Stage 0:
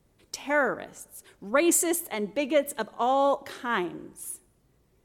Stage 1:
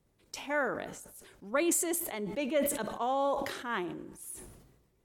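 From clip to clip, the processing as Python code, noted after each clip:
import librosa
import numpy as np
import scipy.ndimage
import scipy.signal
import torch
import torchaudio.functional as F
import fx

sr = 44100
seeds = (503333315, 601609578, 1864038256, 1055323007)

y = fx.sustainer(x, sr, db_per_s=50.0)
y = y * librosa.db_to_amplitude(-7.0)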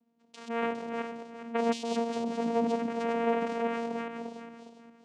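y = fx.reverse_delay_fb(x, sr, ms=204, feedback_pct=54, wet_db=-2.0)
y = fx.vocoder(y, sr, bands=4, carrier='saw', carrier_hz=232.0)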